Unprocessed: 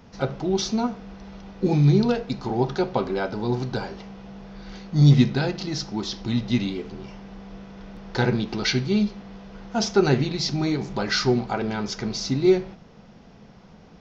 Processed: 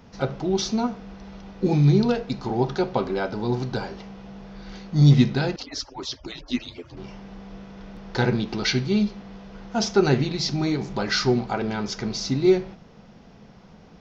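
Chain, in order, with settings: 5.56–6.97 s: harmonic-percussive separation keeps percussive

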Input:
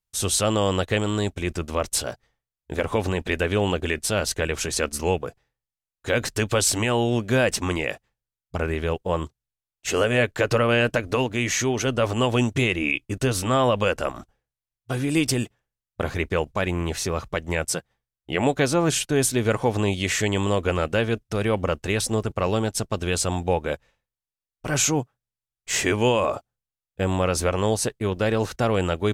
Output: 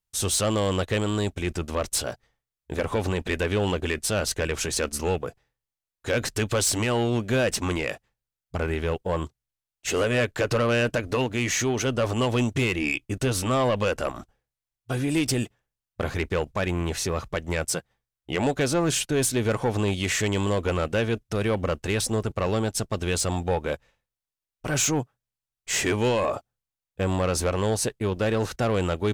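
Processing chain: saturation -16.5 dBFS, distortion -15 dB

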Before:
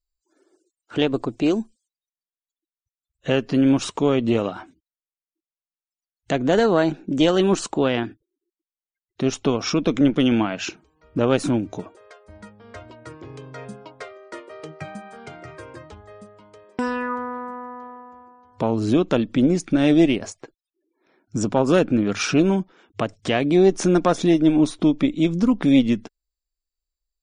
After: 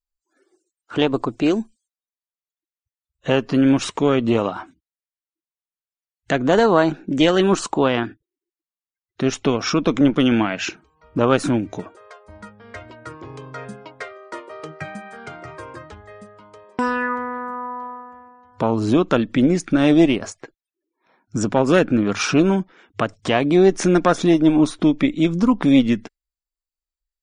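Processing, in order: spectral noise reduction 9 dB; sweeping bell 0.9 Hz 970–2000 Hz +7 dB; trim +1.5 dB

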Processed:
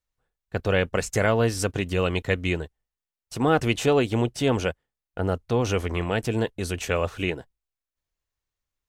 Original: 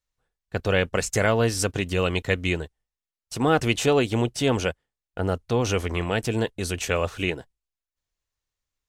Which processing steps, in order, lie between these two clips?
peaking EQ 6.8 kHz -4 dB 2.6 oct

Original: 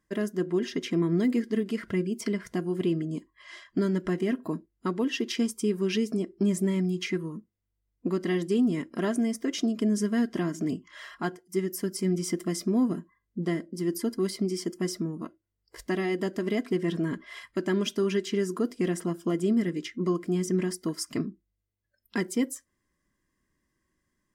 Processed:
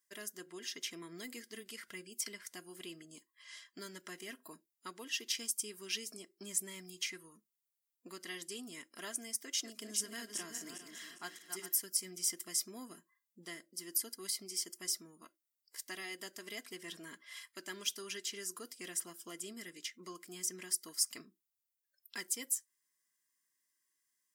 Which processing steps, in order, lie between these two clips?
9.37–11.80 s: backward echo that repeats 202 ms, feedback 55%, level -6.5 dB; differentiator; trim +3 dB

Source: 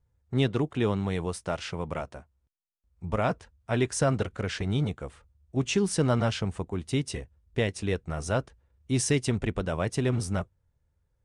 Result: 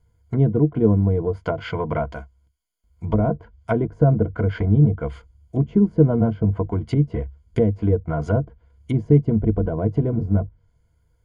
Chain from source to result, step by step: low-pass that closes with the level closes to 470 Hz, closed at -25.5 dBFS; rippled EQ curve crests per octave 1.8, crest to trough 13 dB; trim +8 dB

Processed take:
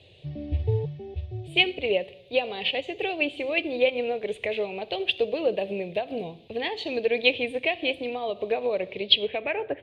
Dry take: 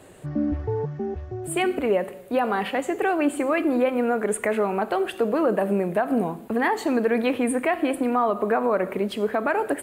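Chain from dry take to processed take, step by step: FFT filter 150 Hz 0 dB, 220 Hz -11 dB, 500 Hz +2 dB, 720 Hz -3 dB, 1.4 kHz -20 dB, 2.5 kHz +11 dB, 3.7 kHz +15 dB, 7.5 kHz -21 dB, 12 kHz -6 dB; low-pass sweep 6.8 kHz -> 1.5 kHz, 8.84–9.69 s; peaking EQ 94 Hz +12.5 dB 0.81 oct; hum notches 50/100 Hz; upward expansion 1.5:1, over -31 dBFS

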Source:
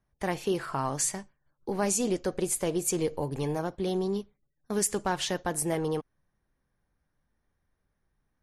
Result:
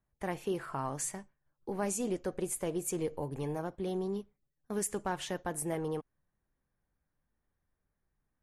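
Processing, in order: peaking EQ 4.7 kHz -7.5 dB 1.1 oct; trim -5.5 dB

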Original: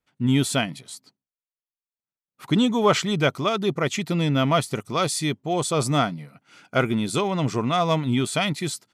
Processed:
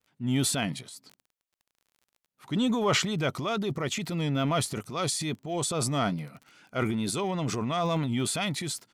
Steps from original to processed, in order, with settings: vibrato 2.3 Hz 54 cents; crackle 23 per s -39 dBFS; transient shaper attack -5 dB, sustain +8 dB; trim -6 dB

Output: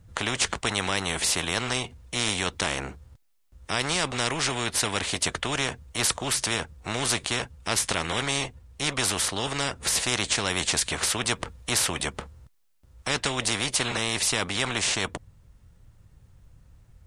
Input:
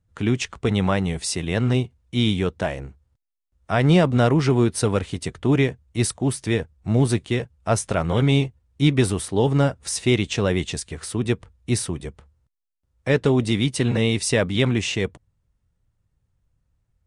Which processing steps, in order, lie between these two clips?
gain riding 2 s; spectrum-flattening compressor 4:1; trim -3.5 dB

